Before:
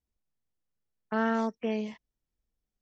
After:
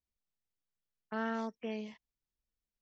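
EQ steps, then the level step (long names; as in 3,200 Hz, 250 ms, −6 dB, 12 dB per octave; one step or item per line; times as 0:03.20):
high-frequency loss of the air 110 metres
high-shelf EQ 3,100 Hz +11 dB
−8.5 dB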